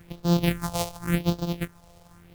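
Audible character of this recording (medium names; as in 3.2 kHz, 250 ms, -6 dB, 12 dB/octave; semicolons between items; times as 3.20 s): a buzz of ramps at a fixed pitch in blocks of 256 samples; phasing stages 4, 0.9 Hz, lowest notch 270–2100 Hz; a quantiser's noise floor 10-bit, dither none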